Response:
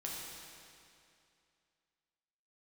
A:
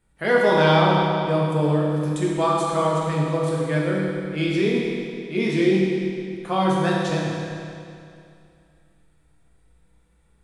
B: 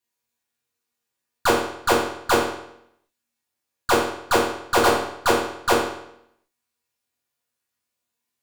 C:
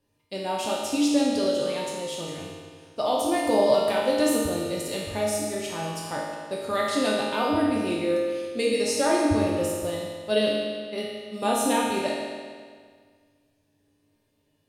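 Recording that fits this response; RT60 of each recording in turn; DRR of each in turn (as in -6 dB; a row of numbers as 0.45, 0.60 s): A; 2.5, 0.75, 1.8 s; -4.0, -6.5, -5.5 dB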